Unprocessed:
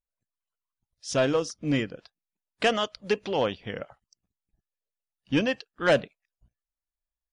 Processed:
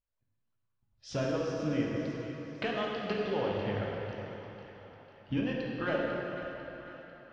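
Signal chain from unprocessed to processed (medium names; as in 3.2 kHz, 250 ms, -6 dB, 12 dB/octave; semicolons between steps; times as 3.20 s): peaking EQ 100 Hz +11.5 dB 0.23 oct; compression 5:1, threshold -33 dBFS, peak gain reduction 14.5 dB; distance through air 210 m; on a send: two-band feedback delay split 660 Hz, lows 103 ms, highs 497 ms, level -12 dB; on the sum: plate-style reverb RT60 3.6 s, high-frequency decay 0.7×, DRR -3 dB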